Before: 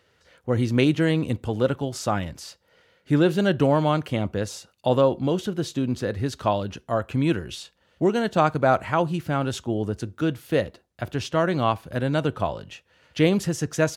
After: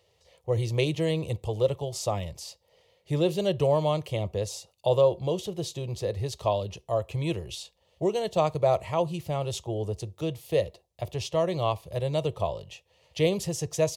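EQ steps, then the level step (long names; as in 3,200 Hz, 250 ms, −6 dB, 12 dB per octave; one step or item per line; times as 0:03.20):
dynamic equaliser 790 Hz, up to −6 dB, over −40 dBFS, Q 4.1
phaser with its sweep stopped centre 620 Hz, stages 4
0.0 dB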